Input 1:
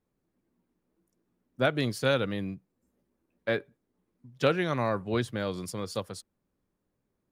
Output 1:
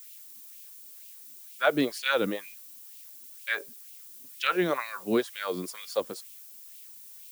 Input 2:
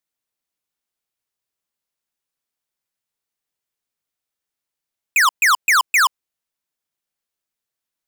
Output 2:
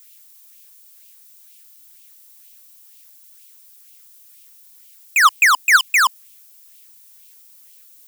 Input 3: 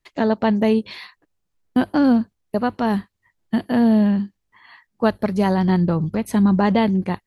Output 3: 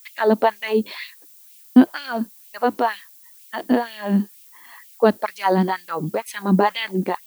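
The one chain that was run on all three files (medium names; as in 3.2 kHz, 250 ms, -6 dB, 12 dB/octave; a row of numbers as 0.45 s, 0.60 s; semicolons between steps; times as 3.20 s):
added noise violet -48 dBFS; LFO high-pass sine 2.1 Hz 230–2700 Hz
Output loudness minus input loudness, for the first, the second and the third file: +0.5 LU, +1.5 LU, -1.5 LU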